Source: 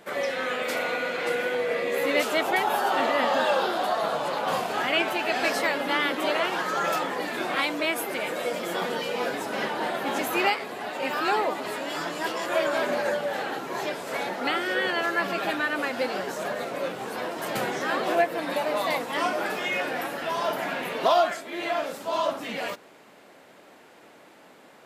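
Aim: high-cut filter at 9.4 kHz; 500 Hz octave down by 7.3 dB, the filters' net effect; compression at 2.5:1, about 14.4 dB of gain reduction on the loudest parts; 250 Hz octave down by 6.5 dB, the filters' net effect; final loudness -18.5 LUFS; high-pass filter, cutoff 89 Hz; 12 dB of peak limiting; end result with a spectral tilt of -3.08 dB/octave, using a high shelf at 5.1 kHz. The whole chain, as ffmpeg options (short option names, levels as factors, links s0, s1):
-af "highpass=89,lowpass=9400,equalizer=f=250:t=o:g=-5,equalizer=f=500:t=o:g=-8.5,highshelf=f=5100:g=-9,acompressor=threshold=0.00631:ratio=2.5,volume=25.1,alimiter=limit=0.299:level=0:latency=1"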